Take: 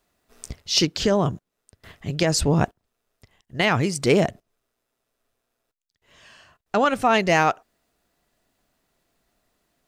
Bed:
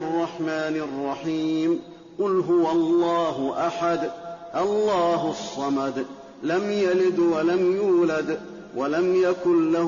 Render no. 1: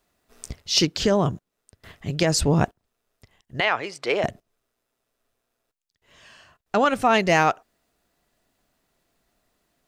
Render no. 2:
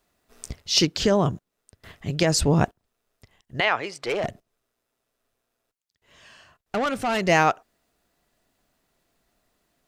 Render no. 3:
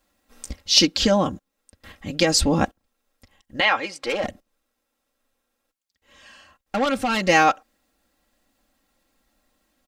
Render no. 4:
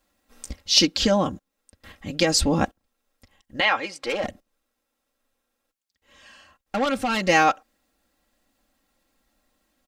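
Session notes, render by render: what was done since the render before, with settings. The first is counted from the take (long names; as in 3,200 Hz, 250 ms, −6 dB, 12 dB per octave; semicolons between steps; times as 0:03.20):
0:03.60–0:04.24: three-way crossover with the lows and the highs turned down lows −24 dB, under 440 Hz, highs −17 dB, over 4,300 Hz
0:04.02–0:07.23: tube saturation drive 20 dB, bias 0.25
comb filter 3.7 ms, depth 78%; dynamic equaliser 4,000 Hz, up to +4 dB, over −35 dBFS, Q 1.2
level −1.5 dB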